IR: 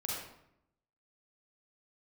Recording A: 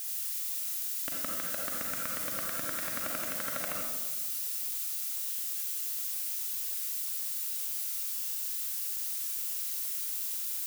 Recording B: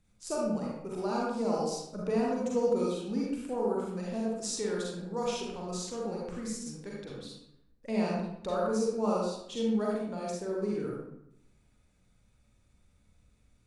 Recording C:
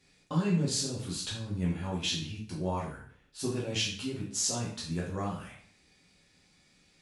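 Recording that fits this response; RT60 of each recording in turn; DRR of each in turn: B; 1.3 s, 0.75 s, 0.55 s; -2.5 dB, -4.5 dB, -5.5 dB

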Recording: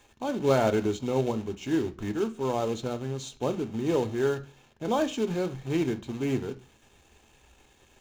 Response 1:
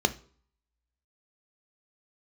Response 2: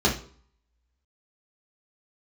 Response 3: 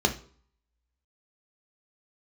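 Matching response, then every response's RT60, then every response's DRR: 1; no single decay rate, 0.50 s, no single decay rate; 9.0 dB, -5.0 dB, 3.5 dB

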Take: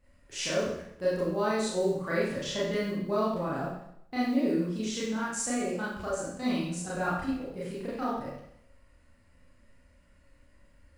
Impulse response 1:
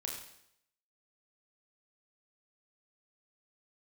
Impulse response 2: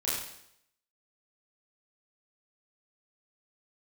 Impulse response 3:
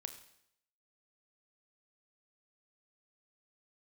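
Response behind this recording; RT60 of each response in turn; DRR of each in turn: 2; 0.75 s, 0.75 s, 0.75 s; -0.5 dB, -8.5 dB, 8.0 dB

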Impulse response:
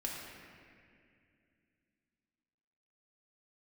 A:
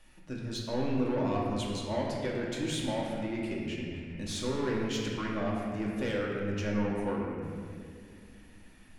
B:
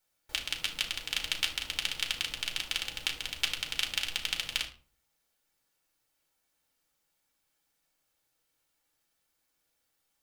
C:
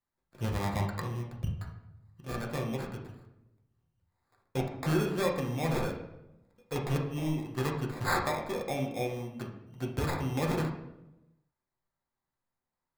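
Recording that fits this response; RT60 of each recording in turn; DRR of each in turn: A; 2.3 s, 0.40 s, 0.90 s; -3.5 dB, 1.0 dB, -1.0 dB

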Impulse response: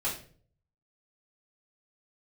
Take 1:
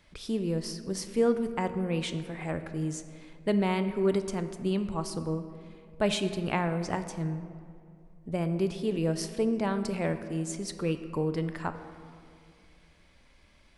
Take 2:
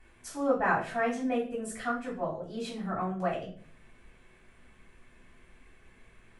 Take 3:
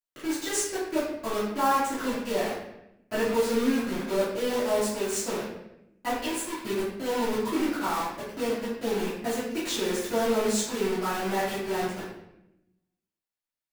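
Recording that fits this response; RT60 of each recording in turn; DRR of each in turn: 2; 2.5 s, 0.45 s, 0.85 s; 9.0 dB, -8.5 dB, -13.0 dB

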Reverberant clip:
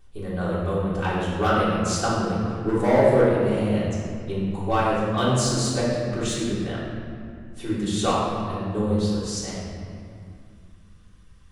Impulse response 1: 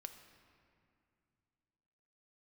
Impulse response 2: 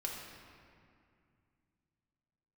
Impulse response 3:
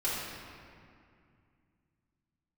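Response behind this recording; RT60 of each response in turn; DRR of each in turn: 3; 2.5 s, 2.3 s, 2.3 s; 6.5 dB, -2.0 dB, -10.5 dB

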